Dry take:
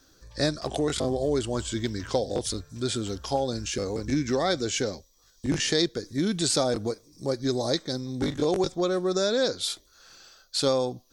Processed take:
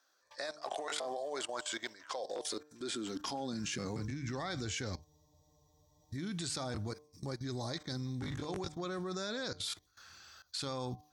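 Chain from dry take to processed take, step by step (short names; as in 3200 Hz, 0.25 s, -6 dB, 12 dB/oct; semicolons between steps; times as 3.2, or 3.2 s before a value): low shelf 96 Hz +6.5 dB; high-pass sweep 600 Hz -> 80 Hz, 2.11–4.6; graphic EQ 500/1000/2000 Hz -7/+5/+5 dB; level quantiser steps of 18 dB; de-hum 150.3 Hz, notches 7; spectral freeze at 5.07, 1.05 s; gain -2.5 dB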